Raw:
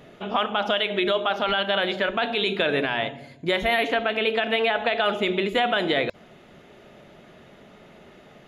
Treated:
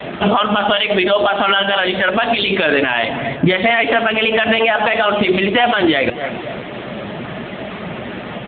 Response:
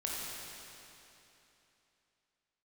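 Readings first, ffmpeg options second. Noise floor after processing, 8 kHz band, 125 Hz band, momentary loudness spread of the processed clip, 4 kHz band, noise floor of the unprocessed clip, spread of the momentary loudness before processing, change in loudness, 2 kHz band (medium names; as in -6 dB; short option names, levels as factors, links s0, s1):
-29 dBFS, no reading, +13.0 dB, 14 LU, +8.0 dB, -51 dBFS, 4 LU, +9.0 dB, +9.5 dB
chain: -filter_complex "[0:a]asplit=2[s0][s1];[s1]adelay=260,lowpass=f=2000:p=1,volume=0.0794,asplit=2[s2][s3];[s3]adelay=260,lowpass=f=2000:p=1,volume=0.48,asplit=2[s4][s5];[s5]adelay=260,lowpass=f=2000:p=1,volume=0.48[s6];[s0][s2][s4][s6]amix=inputs=4:normalize=0,adynamicequalizer=threshold=0.00355:dfrequency=170:dqfactor=3.5:tfrequency=170:tqfactor=3.5:attack=5:release=100:ratio=0.375:range=2.5:mode=cutabove:tftype=bell,aeval=exprs='0.266*(cos(1*acos(clip(val(0)/0.266,-1,1)))-cos(1*PI/2))+0.00188*(cos(4*acos(clip(val(0)/0.266,-1,1)))-cos(4*PI/2))+0.00188*(cos(6*acos(clip(val(0)/0.266,-1,1)))-cos(6*PI/2))':c=same,aeval=exprs='val(0)+0.00141*(sin(2*PI*60*n/s)+sin(2*PI*2*60*n/s)/2+sin(2*PI*3*60*n/s)/3+sin(2*PI*4*60*n/s)/4+sin(2*PI*5*60*n/s)/5)':c=same,equalizer=f=440:w=1.9:g=-5.5,acrusher=bits=10:mix=0:aa=0.000001,acompressor=threshold=0.0251:ratio=10,highpass=f=120:p=1,flanger=delay=1.5:depth=8.2:regen=73:speed=0.92:shape=sinusoidal,alimiter=level_in=47.3:limit=0.891:release=50:level=0:latency=1,volume=0.794" -ar 8000 -c:a libopencore_amrnb -b:a 6700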